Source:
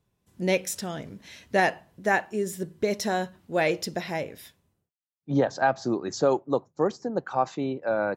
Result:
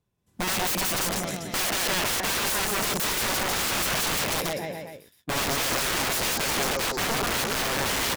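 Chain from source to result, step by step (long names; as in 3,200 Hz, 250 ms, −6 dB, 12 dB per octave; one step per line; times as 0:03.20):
leveller curve on the samples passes 2
bouncing-ball delay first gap 180 ms, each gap 0.9×, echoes 5
wrap-around overflow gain 21.5 dB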